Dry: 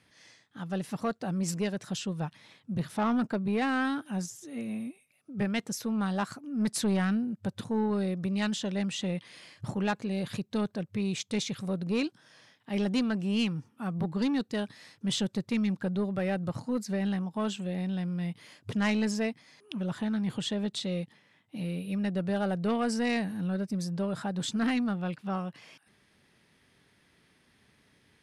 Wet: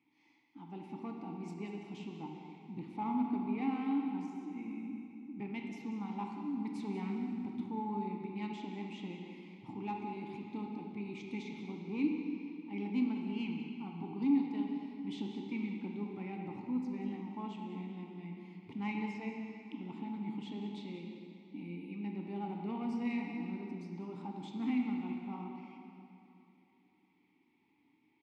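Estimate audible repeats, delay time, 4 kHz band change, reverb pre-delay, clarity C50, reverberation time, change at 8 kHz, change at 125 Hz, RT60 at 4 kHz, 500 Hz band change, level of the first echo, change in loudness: 1, 191 ms, -17.0 dB, 18 ms, 1.5 dB, 2.9 s, under -25 dB, -12.0 dB, 2.4 s, -12.5 dB, -12.5 dB, -8.0 dB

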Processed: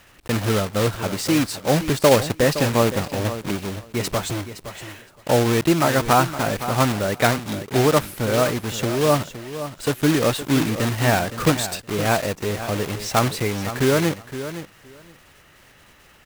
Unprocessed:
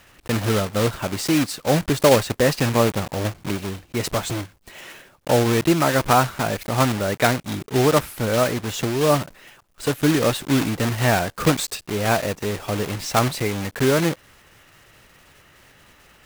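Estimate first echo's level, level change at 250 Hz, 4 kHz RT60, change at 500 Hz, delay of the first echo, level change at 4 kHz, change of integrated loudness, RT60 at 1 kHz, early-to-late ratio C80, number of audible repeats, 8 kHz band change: -12.0 dB, 0.0 dB, no reverb, +0.5 dB, 516 ms, +0.5 dB, 0.0 dB, no reverb, no reverb, 2, +0.5 dB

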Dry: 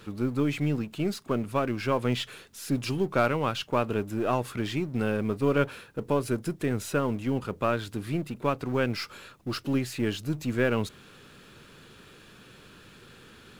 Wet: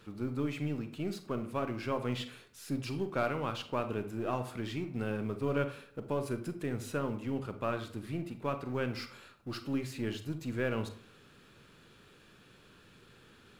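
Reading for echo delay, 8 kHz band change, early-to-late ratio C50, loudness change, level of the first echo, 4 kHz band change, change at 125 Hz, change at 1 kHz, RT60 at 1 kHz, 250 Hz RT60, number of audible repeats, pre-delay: no echo, -9.0 dB, 11.5 dB, -7.5 dB, no echo, -8.0 dB, -7.0 dB, -7.5 dB, 0.50 s, 0.60 s, no echo, 33 ms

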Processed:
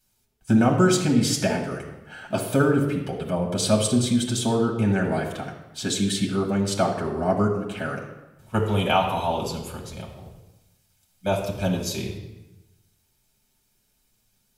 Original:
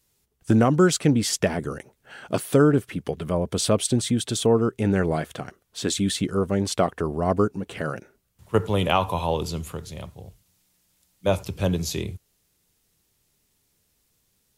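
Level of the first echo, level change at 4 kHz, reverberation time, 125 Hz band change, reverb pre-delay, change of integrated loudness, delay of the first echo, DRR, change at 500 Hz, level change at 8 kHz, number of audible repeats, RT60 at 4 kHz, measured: no echo, +0.5 dB, 1.0 s, 0.0 dB, 5 ms, 0.0 dB, no echo, -1.0 dB, -1.5 dB, -0.5 dB, no echo, 0.85 s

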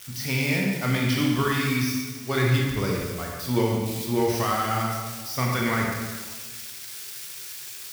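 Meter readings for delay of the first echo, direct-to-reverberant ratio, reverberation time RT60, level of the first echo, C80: no echo, -2.0 dB, 1.4 s, no echo, 2.0 dB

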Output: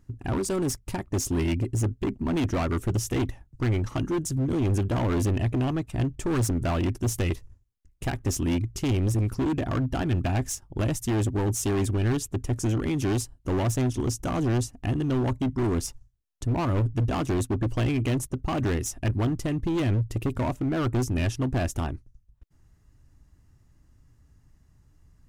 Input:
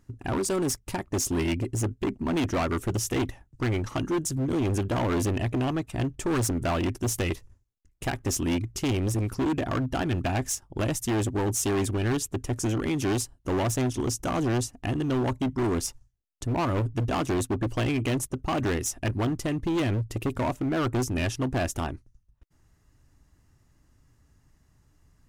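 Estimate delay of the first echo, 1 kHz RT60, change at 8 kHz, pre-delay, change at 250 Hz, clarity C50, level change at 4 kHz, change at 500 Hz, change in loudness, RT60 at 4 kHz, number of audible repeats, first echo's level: no echo, no reverb, -2.5 dB, no reverb, +0.5 dB, no reverb, -2.5 dB, -1.0 dB, +1.0 dB, no reverb, no echo, no echo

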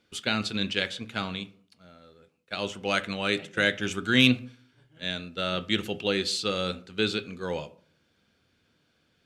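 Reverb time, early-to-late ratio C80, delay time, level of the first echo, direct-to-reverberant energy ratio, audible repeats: 0.50 s, 22.5 dB, no echo, no echo, 11.5 dB, no echo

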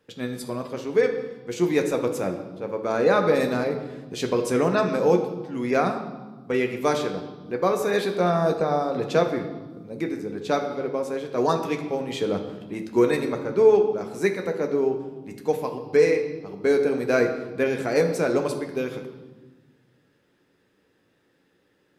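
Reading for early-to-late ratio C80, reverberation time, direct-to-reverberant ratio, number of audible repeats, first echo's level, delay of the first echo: 10.0 dB, 1.3 s, 3.5 dB, no echo, no echo, no echo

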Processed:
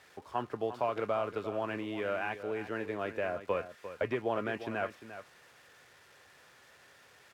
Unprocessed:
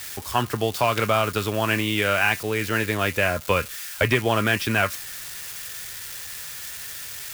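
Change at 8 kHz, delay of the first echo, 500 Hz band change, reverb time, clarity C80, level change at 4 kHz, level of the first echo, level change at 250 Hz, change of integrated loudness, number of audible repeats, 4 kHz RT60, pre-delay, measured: under -30 dB, 349 ms, -8.5 dB, no reverb, no reverb, -22.5 dB, -12.0 dB, -12.0 dB, -11.5 dB, 1, no reverb, no reverb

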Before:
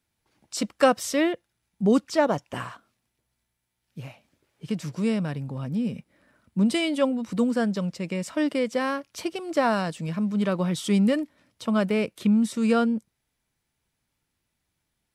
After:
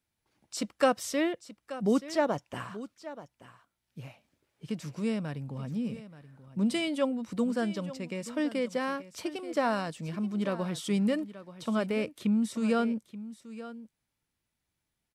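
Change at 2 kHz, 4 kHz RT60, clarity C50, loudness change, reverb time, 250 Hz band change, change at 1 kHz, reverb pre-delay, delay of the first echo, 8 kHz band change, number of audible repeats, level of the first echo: -5.5 dB, no reverb, no reverb, -6.0 dB, no reverb, -6.0 dB, -5.5 dB, no reverb, 880 ms, -5.5 dB, 1, -15.0 dB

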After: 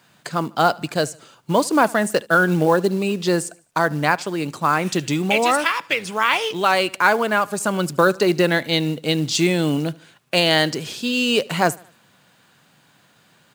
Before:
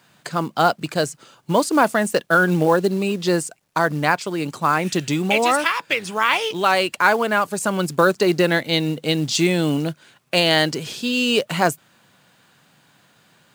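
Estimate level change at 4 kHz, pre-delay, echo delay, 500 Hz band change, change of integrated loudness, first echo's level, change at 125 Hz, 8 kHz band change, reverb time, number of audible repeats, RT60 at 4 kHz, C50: 0.0 dB, no reverb, 75 ms, 0.0 dB, 0.0 dB, -23.5 dB, 0.0 dB, 0.0 dB, no reverb, 2, no reverb, no reverb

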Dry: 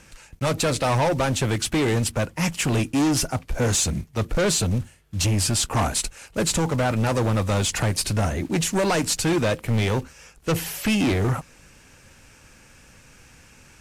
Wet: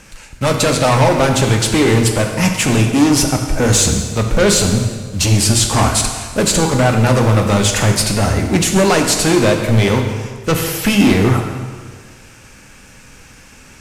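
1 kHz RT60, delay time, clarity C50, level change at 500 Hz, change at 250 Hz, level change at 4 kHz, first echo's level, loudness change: 1.6 s, no echo, 5.5 dB, +9.5 dB, +9.5 dB, +9.0 dB, no echo, +9.0 dB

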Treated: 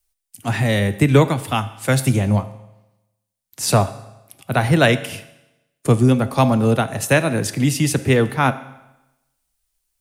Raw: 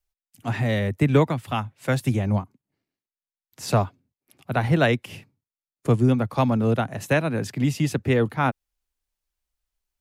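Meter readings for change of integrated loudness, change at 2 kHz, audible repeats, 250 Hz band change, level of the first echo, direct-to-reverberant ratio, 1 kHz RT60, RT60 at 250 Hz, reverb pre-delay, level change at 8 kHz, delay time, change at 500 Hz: +5.0 dB, +6.5 dB, no echo, +4.5 dB, no echo, 12.0 dB, 0.95 s, 0.95 s, 7 ms, +13.5 dB, no echo, +5.0 dB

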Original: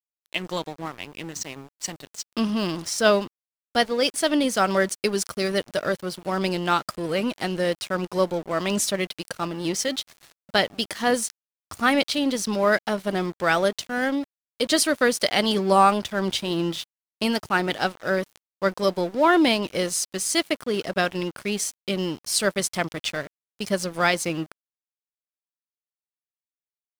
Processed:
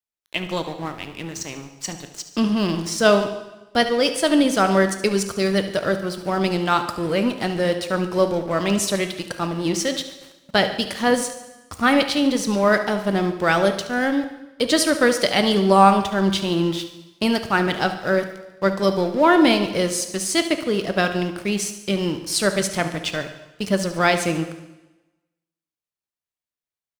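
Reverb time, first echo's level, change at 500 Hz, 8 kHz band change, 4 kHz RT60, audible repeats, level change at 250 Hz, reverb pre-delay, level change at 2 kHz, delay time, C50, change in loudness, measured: 1.0 s, -13.5 dB, +3.5 dB, +0.5 dB, 1.0 s, 4, +5.0 dB, 6 ms, +2.5 dB, 72 ms, 9.0 dB, +3.5 dB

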